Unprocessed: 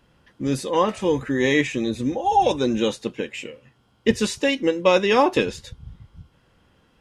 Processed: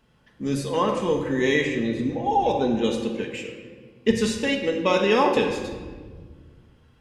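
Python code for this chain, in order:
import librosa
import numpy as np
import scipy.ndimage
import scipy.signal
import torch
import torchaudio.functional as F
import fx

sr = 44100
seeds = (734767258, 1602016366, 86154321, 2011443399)

y = fx.lowpass(x, sr, hz=fx.line((1.64, 3800.0), (2.83, 2100.0)), slope=6, at=(1.64, 2.83), fade=0.02)
y = fx.room_shoebox(y, sr, seeds[0], volume_m3=1600.0, walls='mixed', distance_m=1.5)
y = y * librosa.db_to_amplitude(-4.0)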